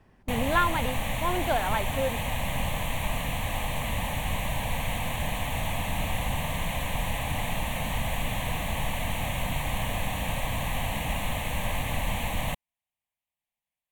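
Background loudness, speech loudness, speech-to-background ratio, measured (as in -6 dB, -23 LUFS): -30.5 LUFS, -29.5 LUFS, 1.0 dB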